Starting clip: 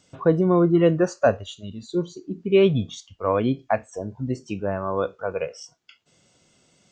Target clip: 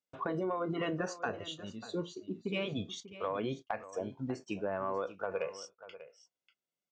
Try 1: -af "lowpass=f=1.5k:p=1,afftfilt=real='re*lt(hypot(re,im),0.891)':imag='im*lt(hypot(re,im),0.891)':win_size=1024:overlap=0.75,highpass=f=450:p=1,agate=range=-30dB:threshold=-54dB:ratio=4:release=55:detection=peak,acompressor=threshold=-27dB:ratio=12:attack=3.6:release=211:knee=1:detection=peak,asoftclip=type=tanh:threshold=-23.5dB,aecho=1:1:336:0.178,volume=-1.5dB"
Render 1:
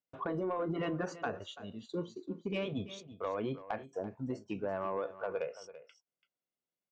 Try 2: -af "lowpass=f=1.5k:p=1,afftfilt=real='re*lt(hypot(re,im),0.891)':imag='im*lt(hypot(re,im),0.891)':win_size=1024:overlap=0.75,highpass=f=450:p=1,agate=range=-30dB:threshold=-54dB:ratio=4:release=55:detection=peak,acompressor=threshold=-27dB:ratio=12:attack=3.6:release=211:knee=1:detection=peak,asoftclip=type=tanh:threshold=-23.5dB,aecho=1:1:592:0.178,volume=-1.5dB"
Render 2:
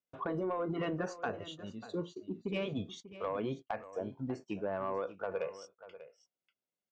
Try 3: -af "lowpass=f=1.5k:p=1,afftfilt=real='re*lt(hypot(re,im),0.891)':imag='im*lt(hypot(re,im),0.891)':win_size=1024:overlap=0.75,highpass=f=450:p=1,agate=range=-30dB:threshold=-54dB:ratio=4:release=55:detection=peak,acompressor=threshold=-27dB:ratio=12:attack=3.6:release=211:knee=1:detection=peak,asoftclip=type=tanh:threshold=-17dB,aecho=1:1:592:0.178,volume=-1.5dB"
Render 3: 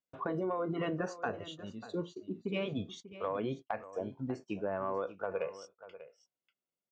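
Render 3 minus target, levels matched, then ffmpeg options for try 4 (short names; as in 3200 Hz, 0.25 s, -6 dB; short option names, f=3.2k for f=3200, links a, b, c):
4000 Hz band -4.5 dB
-af "lowpass=f=3.4k:p=1,afftfilt=real='re*lt(hypot(re,im),0.891)':imag='im*lt(hypot(re,im),0.891)':win_size=1024:overlap=0.75,highpass=f=450:p=1,agate=range=-30dB:threshold=-54dB:ratio=4:release=55:detection=peak,acompressor=threshold=-27dB:ratio=12:attack=3.6:release=211:knee=1:detection=peak,asoftclip=type=tanh:threshold=-17dB,aecho=1:1:592:0.178,volume=-1.5dB"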